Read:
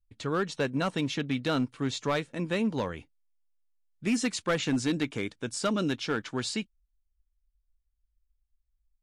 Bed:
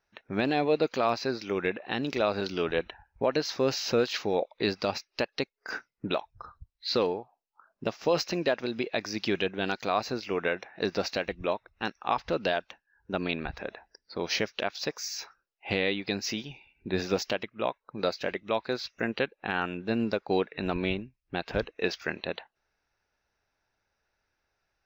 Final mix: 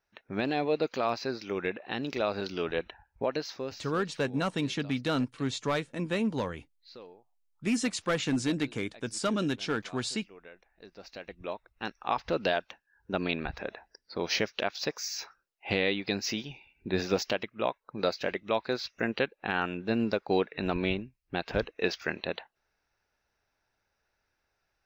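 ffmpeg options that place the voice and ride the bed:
-filter_complex "[0:a]adelay=3600,volume=-1dB[a];[1:a]volume=19dB,afade=t=out:st=3.22:d=0.66:silence=0.112202,afade=t=in:st=10.95:d=1.48:silence=0.0794328[b];[a][b]amix=inputs=2:normalize=0"

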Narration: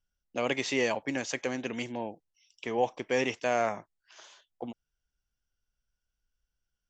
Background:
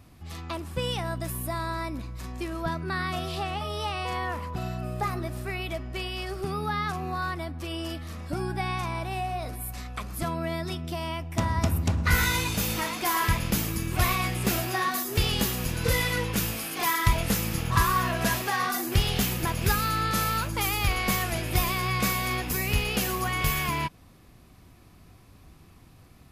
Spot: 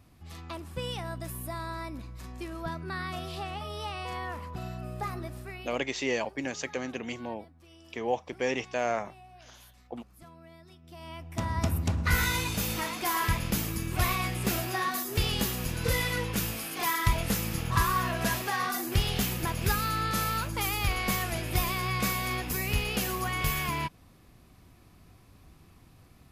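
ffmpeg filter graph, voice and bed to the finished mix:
-filter_complex "[0:a]adelay=5300,volume=-1.5dB[a];[1:a]volume=13dB,afade=t=out:st=5.24:d=0.7:silence=0.158489,afade=t=in:st=10.82:d=0.83:silence=0.11885[b];[a][b]amix=inputs=2:normalize=0"

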